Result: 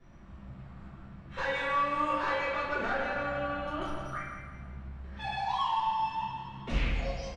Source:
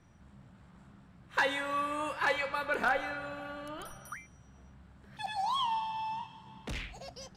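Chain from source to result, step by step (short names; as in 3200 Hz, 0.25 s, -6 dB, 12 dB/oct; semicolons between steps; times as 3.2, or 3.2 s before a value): compressor 5:1, threshold -34 dBFS, peak gain reduction 9.5 dB; hard clip -33.5 dBFS, distortion -16 dB; air absorption 120 m; feedback echo 0.164 s, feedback 43%, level -8 dB; reverb RT60 0.90 s, pre-delay 4 ms, DRR -11 dB; gain -6 dB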